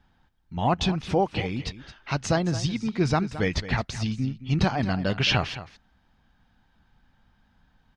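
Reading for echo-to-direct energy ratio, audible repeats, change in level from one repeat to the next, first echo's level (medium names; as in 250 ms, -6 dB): -14.0 dB, 1, no regular repeats, -14.0 dB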